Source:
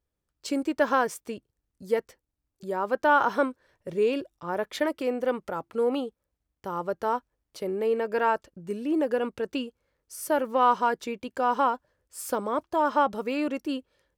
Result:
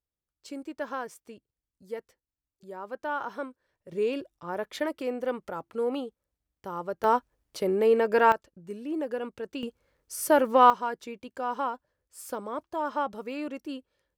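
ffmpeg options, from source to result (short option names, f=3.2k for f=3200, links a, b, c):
-af "asetnsamples=n=441:p=0,asendcmd='3.92 volume volume -3.5dB;7.04 volume volume 4dB;8.32 volume volume -6dB;9.63 volume volume 4dB;10.7 volume volume -6.5dB',volume=-11dB"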